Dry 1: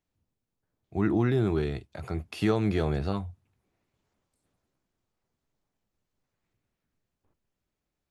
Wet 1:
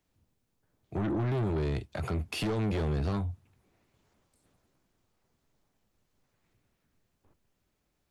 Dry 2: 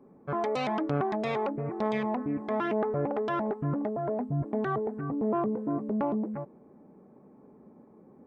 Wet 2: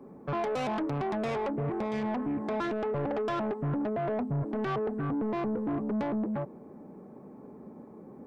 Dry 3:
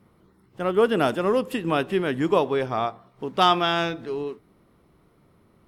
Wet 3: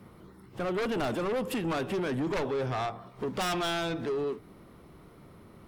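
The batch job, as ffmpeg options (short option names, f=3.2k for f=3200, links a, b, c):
-filter_complex "[0:a]aeval=exprs='0.473*sin(PI/2*3.16*val(0)/0.473)':c=same,acrossover=split=120[a][b];[b]acompressor=threshold=-20dB:ratio=2[c];[a][c]amix=inputs=2:normalize=0,asoftclip=type=tanh:threshold=-19.5dB,volume=-7dB"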